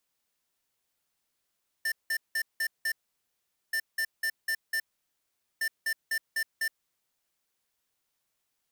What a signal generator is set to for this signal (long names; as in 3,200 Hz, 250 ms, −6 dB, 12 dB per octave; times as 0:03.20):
beeps in groups square 1,790 Hz, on 0.07 s, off 0.18 s, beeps 5, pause 0.81 s, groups 3, −29 dBFS